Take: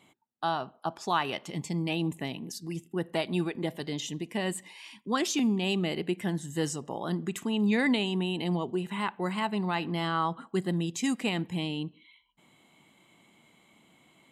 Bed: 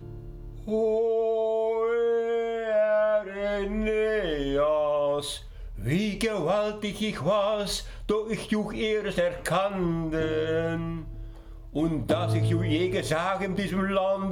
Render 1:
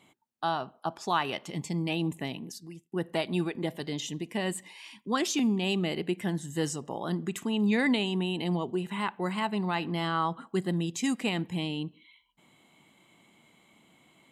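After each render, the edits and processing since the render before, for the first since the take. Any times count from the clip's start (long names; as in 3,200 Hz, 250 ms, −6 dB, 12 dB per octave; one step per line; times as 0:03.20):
0:02.37–0:02.92: fade out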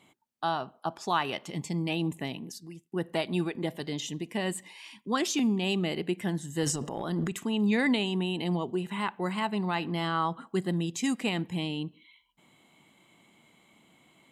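0:06.63–0:07.32: transient designer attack −3 dB, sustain +11 dB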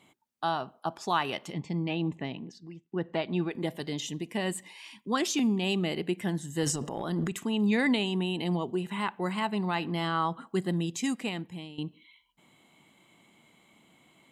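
0:01.53–0:03.51: high-frequency loss of the air 180 metres
0:10.92–0:11.78: fade out, to −15 dB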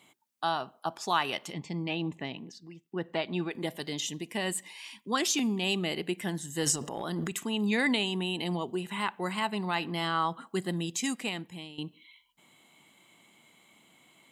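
spectral tilt +1.5 dB per octave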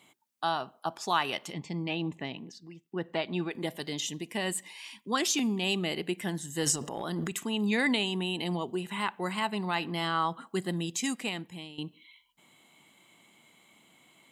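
no processing that can be heard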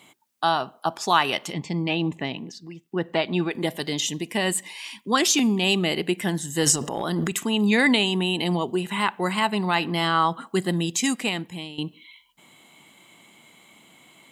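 level +8 dB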